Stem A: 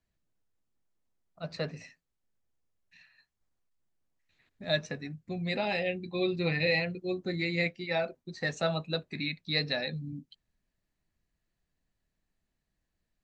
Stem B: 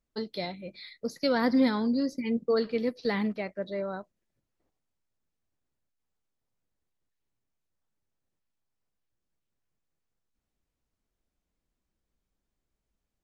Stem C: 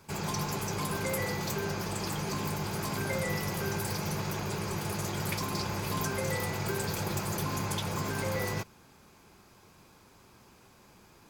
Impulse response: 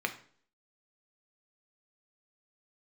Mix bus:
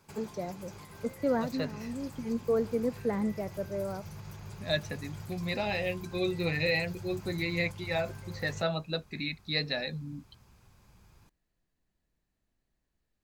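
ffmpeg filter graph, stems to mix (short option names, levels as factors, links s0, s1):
-filter_complex "[0:a]volume=0.891,asplit=2[s0][s1];[1:a]lowpass=1100,volume=0.891[s2];[2:a]acompressor=threshold=0.0126:ratio=3,alimiter=level_in=2.37:limit=0.0631:level=0:latency=1:release=262,volume=0.422,asubboost=boost=6:cutoff=120,volume=0.447[s3];[s1]apad=whole_len=583517[s4];[s2][s4]sidechaincompress=threshold=0.00631:ratio=8:attack=16:release=798[s5];[s0][s5][s3]amix=inputs=3:normalize=0"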